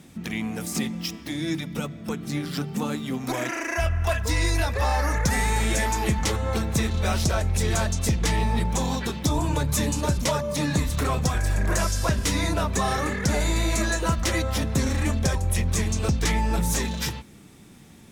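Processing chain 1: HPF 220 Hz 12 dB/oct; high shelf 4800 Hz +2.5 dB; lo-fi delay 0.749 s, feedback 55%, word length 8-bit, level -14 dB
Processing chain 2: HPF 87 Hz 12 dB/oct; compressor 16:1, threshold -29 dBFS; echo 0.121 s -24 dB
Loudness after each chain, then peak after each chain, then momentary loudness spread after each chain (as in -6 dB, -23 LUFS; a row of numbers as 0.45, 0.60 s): -27.0, -33.5 LUFS; -9.5, -18.5 dBFS; 7, 2 LU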